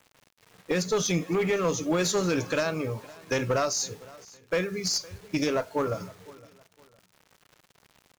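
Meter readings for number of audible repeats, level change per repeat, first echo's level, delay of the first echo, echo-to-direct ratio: 2, -10.0 dB, -22.0 dB, 0.511 s, -21.5 dB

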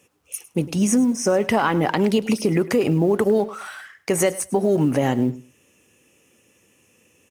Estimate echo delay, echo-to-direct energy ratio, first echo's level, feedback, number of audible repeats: 0.104 s, -18.0 dB, -18.0 dB, 18%, 2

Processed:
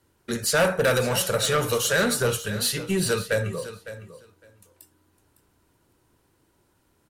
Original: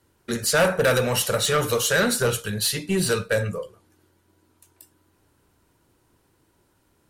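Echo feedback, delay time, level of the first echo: 15%, 0.557 s, -14.0 dB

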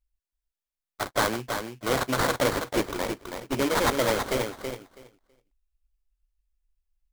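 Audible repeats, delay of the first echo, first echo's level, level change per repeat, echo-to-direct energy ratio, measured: 2, 0.326 s, -6.5 dB, -16.0 dB, -6.5 dB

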